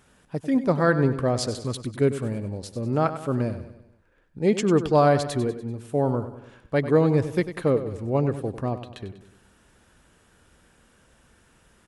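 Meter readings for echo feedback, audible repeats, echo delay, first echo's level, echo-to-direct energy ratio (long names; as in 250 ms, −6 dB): 50%, 4, 97 ms, −12.0 dB, −11.0 dB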